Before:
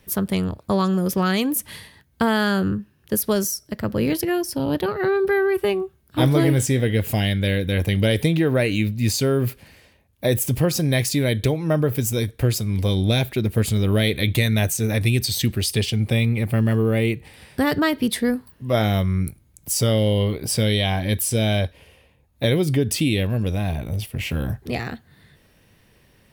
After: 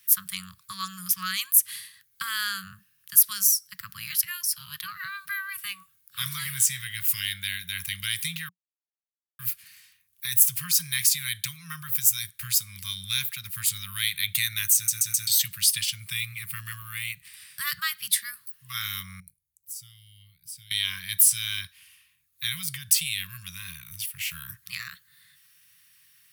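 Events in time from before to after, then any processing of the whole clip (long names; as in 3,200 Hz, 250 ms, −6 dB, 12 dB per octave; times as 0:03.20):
0:08.49–0:09.39: silence
0:14.75: stutter in place 0.13 s, 4 plays
0:19.20–0:20.71: guitar amp tone stack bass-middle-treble 10-0-1
whole clip: Chebyshev band-stop filter 180–1,100 Hz, order 5; spectral tilt +4.5 dB per octave; level −8 dB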